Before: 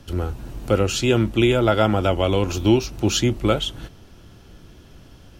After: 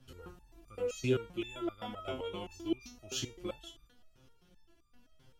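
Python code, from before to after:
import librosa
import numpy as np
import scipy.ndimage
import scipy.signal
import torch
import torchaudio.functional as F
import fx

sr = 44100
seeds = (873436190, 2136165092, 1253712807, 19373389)

y = fx.resonator_held(x, sr, hz=7.7, low_hz=130.0, high_hz=1200.0)
y = y * librosa.db_to_amplitude(-4.5)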